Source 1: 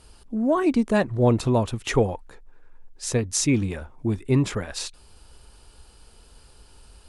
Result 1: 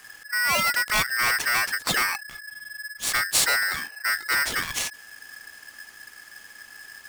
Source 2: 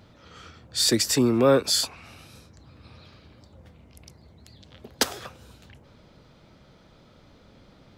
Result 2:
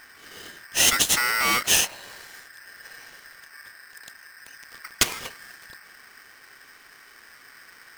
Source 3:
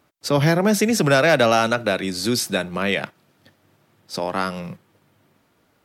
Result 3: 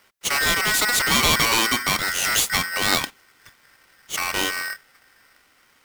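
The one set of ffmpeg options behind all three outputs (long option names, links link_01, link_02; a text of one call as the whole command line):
ffmpeg -i in.wav -filter_complex "[0:a]acrossover=split=1600[link_01][link_02];[link_01]asoftclip=type=tanh:threshold=-24.5dB[link_03];[link_03][link_02]amix=inputs=2:normalize=0,aeval=exprs='val(0)*sgn(sin(2*PI*1700*n/s))':channel_layout=same,volume=4dB" out.wav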